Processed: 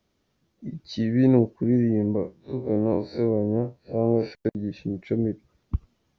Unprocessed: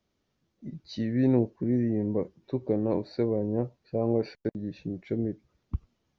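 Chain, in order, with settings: 2.15–4.32 s: spectral blur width 82 ms; trim +5 dB

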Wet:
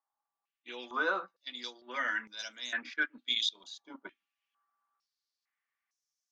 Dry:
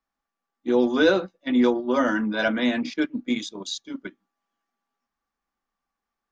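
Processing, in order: treble shelf 4.3 kHz +10 dB; in parallel at 0 dB: gain riding; on the sum: step-sequenced band-pass 2.2 Hz 900–5900 Hz; trim -4 dB

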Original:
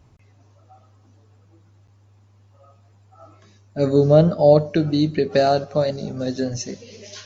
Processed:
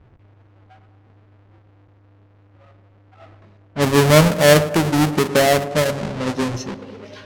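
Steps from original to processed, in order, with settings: square wave that keeps the level; tape echo 106 ms, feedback 83%, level -12 dB, low-pass 1.1 kHz; level-controlled noise filter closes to 2.4 kHz, open at -12 dBFS; trim -2 dB

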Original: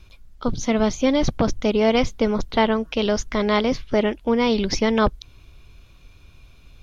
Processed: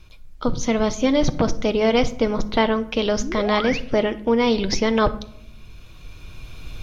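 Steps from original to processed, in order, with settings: recorder AGC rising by 7.5 dB/s; painted sound rise, 3.21–3.80 s, 220–3000 Hz -30 dBFS; reverberation RT60 0.75 s, pre-delay 6 ms, DRR 9.5 dB

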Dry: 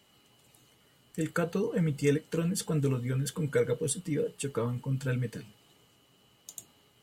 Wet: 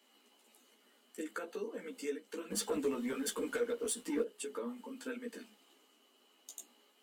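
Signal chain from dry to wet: Chebyshev high-pass 210 Hz, order 8; compression 3:1, threshold -36 dBFS, peak gain reduction 11 dB; 2.50–4.23 s: waveshaping leveller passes 2; chorus voices 4, 1.4 Hz, delay 14 ms, depth 3 ms

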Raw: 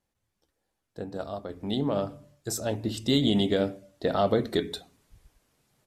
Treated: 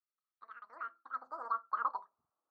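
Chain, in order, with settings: cascade formant filter e; bass shelf 230 Hz +12 dB; speed mistake 33 rpm record played at 78 rpm; band-pass sweep 2.6 kHz -> 390 Hz, 0.21–3.59 s; trim -1.5 dB

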